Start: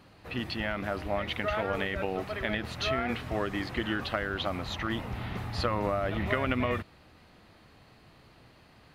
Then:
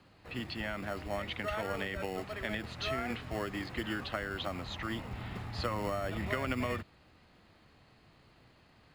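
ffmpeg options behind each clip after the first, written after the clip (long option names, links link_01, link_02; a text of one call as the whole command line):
ffmpeg -i in.wav -filter_complex "[0:a]lowpass=8200,bandreject=frequency=5700:width=14,acrossover=split=210|520|4700[link_01][link_02][link_03][link_04];[link_02]acrusher=samples=18:mix=1:aa=0.000001[link_05];[link_01][link_05][link_03][link_04]amix=inputs=4:normalize=0,volume=-5dB" out.wav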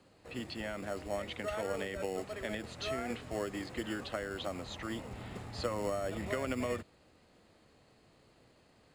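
ffmpeg -i in.wav -af "equalizer=frequency=250:width_type=o:width=1:gain=3,equalizer=frequency=500:width_type=o:width=1:gain=8,equalizer=frequency=8000:width_type=o:width=1:gain=12,volume=-5.5dB" out.wav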